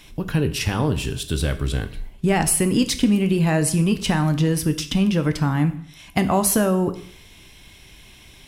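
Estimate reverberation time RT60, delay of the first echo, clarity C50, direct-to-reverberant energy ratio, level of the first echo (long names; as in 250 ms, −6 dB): 0.60 s, no echo audible, 14.0 dB, 9.0 dB, no echo audible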